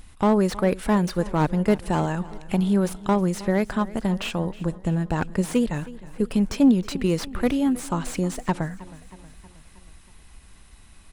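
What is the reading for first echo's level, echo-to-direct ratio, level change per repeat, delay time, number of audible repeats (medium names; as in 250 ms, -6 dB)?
-19.0 dB, -17.0 dB, -4.5 dB, 317 ms, 4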